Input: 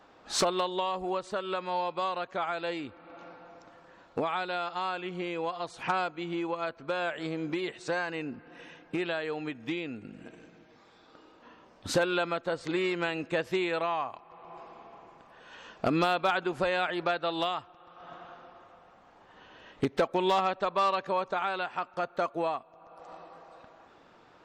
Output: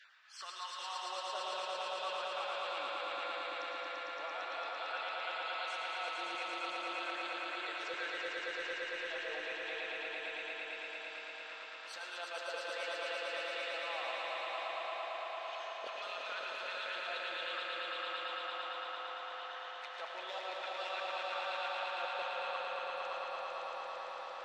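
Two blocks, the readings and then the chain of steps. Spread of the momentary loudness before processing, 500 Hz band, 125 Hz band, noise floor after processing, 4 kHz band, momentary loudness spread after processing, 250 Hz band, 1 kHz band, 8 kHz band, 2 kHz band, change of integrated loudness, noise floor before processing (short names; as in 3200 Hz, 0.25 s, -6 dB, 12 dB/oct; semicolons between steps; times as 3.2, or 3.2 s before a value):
21 LU, -10.5 dB, under -35 dB, -47 dBFS, -2.0 dB, 5 LU, -23.0 dB, -7.5 dB, -10.5 dB, -3.0 dB, -8.5 dB, -58 dBFS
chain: random spectral dropouts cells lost 25%; weighting filter D; reverse; compressor 6:1, threshold -41 dBFS, peak gain reduction 21.5 dB; reverse; LFO high-pass saw down 0.63 Hz 490–1600 Hz; on a send: swelling echo 0.113 s, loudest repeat 5, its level -4 dB; on the sum: digital reverb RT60 3.3 s, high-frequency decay 0.4×, pre-delay 60 ms, DRR 1.5 dB; attack slew limiter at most 120 dB/s; gain -6 dB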